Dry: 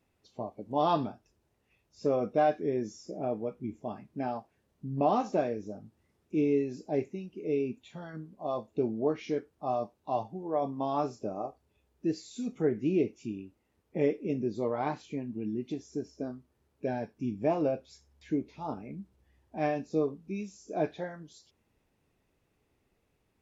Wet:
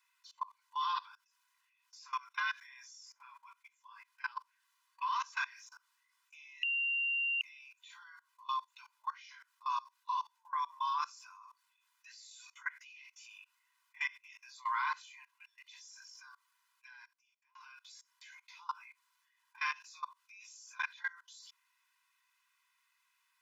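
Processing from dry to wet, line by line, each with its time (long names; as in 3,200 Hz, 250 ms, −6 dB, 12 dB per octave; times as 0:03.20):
0:06.63–0:07.41: beep over 2,770 Hz −18 dBFS
0:16.32–0:17.55: fade out
whole clip: Chebyshev high-pass filter 970 Hz, order 8; comb filter 2 ms, depth 89%; output level in coarse steps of 22 dB; level +10.5 dB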